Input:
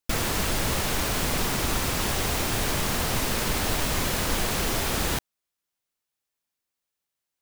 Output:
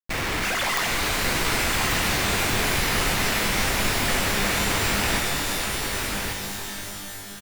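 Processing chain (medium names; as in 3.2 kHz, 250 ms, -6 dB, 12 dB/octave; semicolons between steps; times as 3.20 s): 0.43–0.87 s: formants replaced by sine waves; resonant low-pass 2.3 kHz, resonance Q 2.2; companded quantiser 2-bit; on a send: delay 1140 ms -5 dB; on the sum: pitch-shifted reverb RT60 3.6 s, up +12 st, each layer -2 dB, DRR 4 dB; trim -1.5 dB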